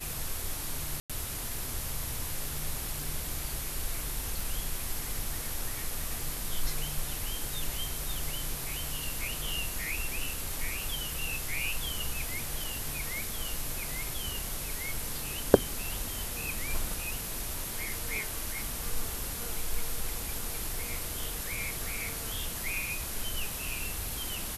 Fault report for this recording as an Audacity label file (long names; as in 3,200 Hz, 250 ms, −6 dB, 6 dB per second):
1.000000	1.100000	drop-out 96 ms